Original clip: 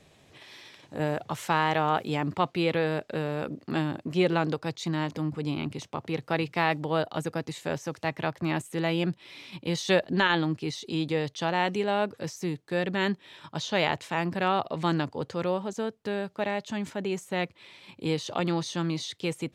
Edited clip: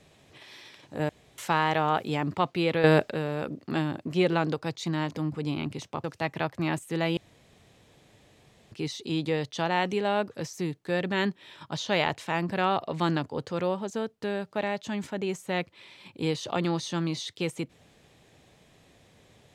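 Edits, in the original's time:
1.09–1.38 room tone
2.84–3.1 gain +9.5 dB
6.04–7.87 cut
9–10.55 room tone

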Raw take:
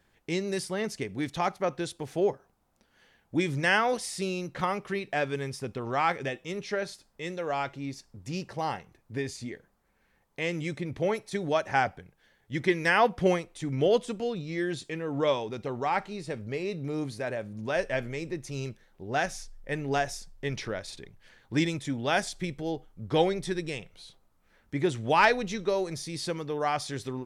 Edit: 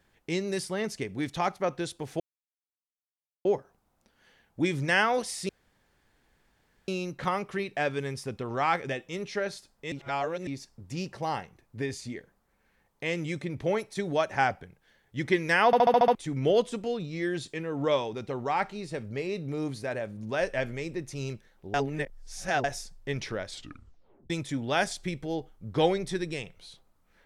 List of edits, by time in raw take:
2.2 insert silence 1.25 s
4.24 insert room tone 1.39 s
7.28–7.83 reverse
13.02 stutter in place 0.07 s, 7 plays
19.1–20 reverse
20.83 tape stop 0.83 s

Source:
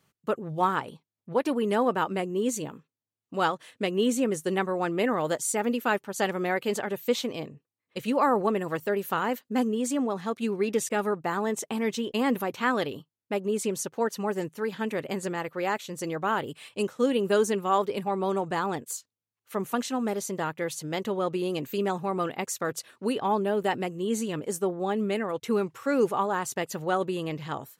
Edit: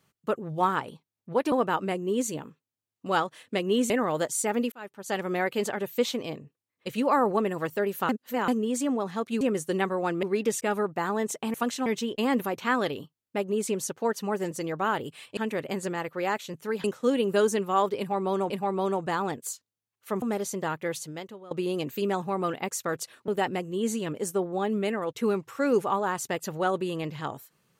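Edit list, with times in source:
1.52–1.8 cut
4.18–5 move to 10.51
5.82–6.42 fade in
9.19–9.58 reverse
14.47–14.77 swap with 15.94–16.8
17.94–18.46 loop, 2 plays
19.66–19.98 move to 11.82
20.73–21.27 fade out quadratic, to -19 dB
23.04–23.55 cut

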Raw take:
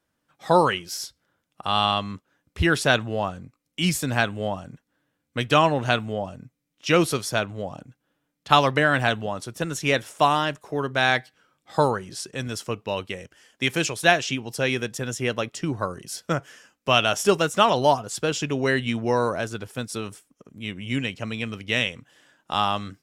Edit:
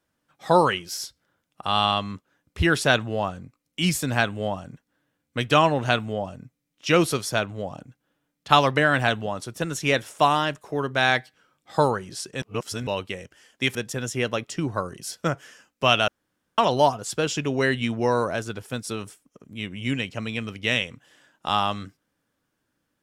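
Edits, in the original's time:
12.42–12.87 reverse
13.75–14.8 cut
17.13–17.63 room tone

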